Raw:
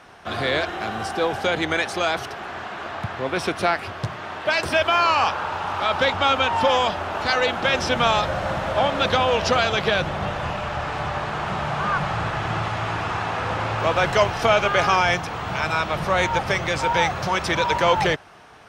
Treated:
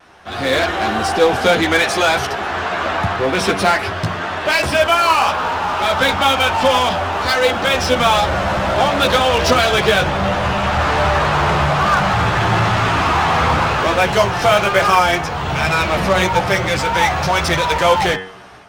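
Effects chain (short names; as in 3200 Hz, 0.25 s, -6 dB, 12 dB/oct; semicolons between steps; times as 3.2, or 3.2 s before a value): de-hum 94.23 Hz, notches 36; vibrato 0.58 Hz 17 cents; chorus voices 4, 0.25 Hz, delay 13 ms, depth 2.9 ms; in parallel at -5.5 dB: wavefolder -28.5 dBFS; on the sum: AGC gain up to 13 dB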